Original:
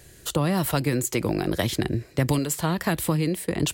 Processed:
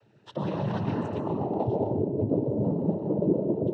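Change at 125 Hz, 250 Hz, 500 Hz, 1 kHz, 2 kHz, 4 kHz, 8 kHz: -4.5 dB, -2.0 dB, +0.5 dB, -4.0 dB, -17.0 dB, under -15 dB, under -35 dB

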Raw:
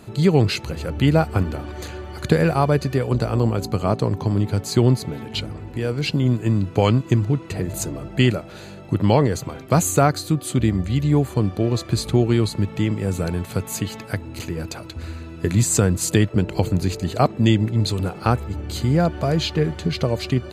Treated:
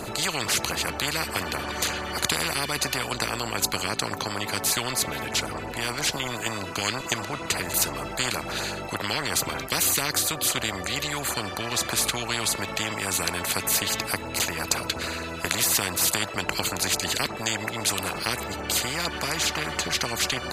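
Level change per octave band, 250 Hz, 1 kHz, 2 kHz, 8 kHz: -14.0, -2.5, +4.5, +4.5 dB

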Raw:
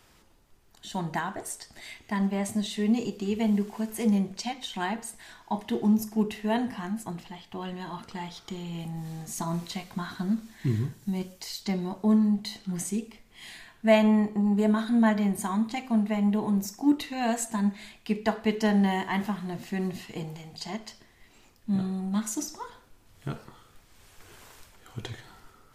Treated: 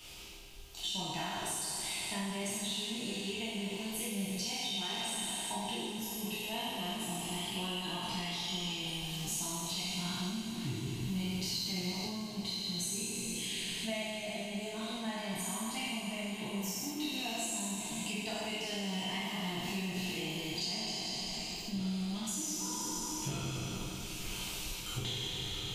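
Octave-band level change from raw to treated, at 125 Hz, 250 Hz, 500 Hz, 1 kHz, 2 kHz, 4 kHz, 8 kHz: -8.0, -12.5, -11.0, -8.0, -3.5, +6.0, +3.0 dB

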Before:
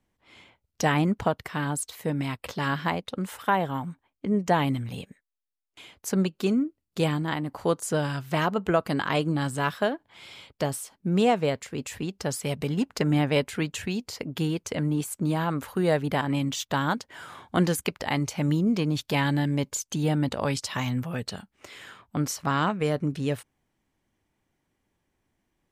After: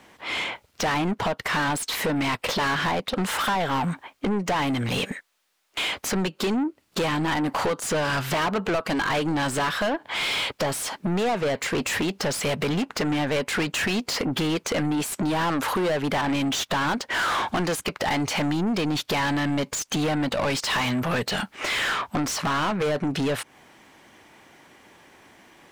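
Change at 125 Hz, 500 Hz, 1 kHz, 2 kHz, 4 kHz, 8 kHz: -2.5, +1.5, +3.5, +6.5, +8.0, +4.5 dB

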